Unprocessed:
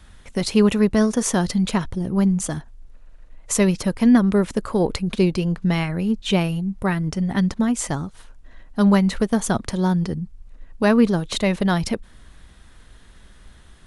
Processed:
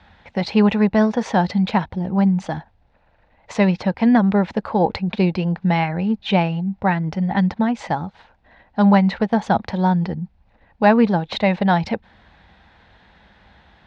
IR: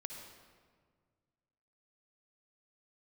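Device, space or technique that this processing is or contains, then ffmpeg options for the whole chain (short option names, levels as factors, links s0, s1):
guitar cabinet: -af "highpass=100,equalizer=f=130:t=q:w=4:g=-9,equalizer=f=270:t=q:w=4:g=-7,equalizer=f=390:t=q:w=4:g=-7,equalizer=f=820:t=q:w=4:g=9,equalizer=f=1200:t=q:w=4:g=-6,equalizer=f=3100:t=q:w=4:g=-5,lowpass=f=3800:w=0.5412,lowpass=f=3800:w=1.3066,volume=1.58"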